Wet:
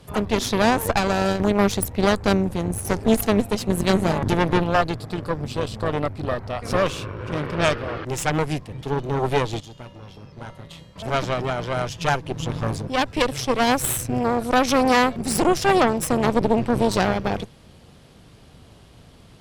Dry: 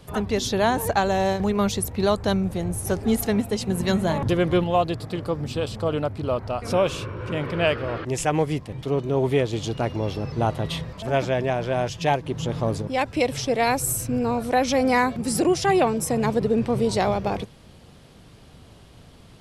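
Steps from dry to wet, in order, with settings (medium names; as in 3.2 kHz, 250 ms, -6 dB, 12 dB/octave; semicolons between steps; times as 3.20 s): Chebyshev shaper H 4 -8 dB, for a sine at -8 dBFS; 9.60–10.96 s: feedback comb 190 Hz, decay 0.88 s, harmonics odd, mix 80%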